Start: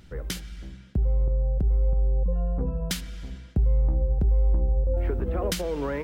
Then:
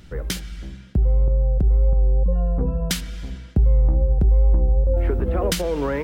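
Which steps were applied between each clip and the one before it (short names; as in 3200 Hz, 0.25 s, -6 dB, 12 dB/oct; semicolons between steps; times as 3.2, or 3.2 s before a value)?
wow and flutter 26 cents; gain +5.5 dB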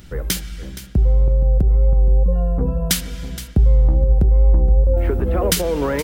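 high shelf 8500 Hz +10.5 dB; echo 0.47 s -14.5 dB; gain +3 dB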